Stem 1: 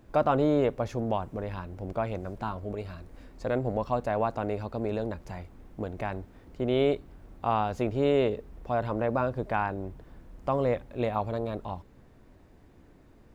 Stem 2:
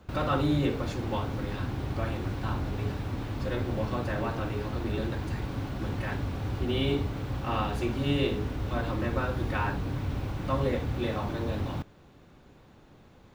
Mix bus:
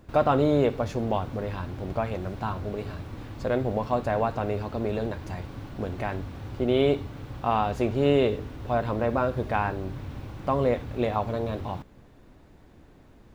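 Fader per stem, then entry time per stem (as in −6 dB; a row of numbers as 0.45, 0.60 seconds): +2.0, −5.5 decibels; 0.00, 0.00 seconds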